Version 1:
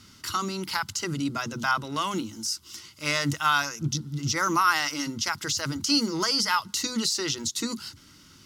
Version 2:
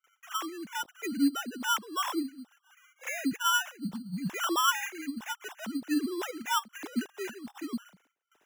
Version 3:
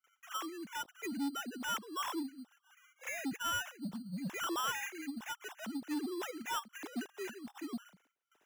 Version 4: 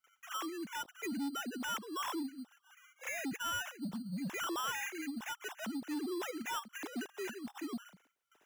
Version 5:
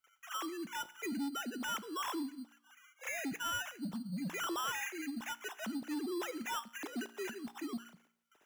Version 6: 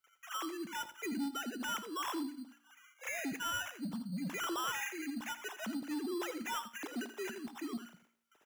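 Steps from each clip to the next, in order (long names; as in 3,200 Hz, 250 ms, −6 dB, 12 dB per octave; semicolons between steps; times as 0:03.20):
three sine waves on the formant tracks; noise gate with hold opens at −54 dBFS; decimation without filtering 10×; level −5 dB
soft clipping −28 dBFS, distortion −10 dB; level −4 dB
brickwall limiter −37 dBFS, peak gain reduction 5 dB; level +3 dB
tuned comb filter 58 Hz, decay 0.69 s, harmonics all, mix 40%; level +3.5 dB
single-tap delay 83 ms −12 dB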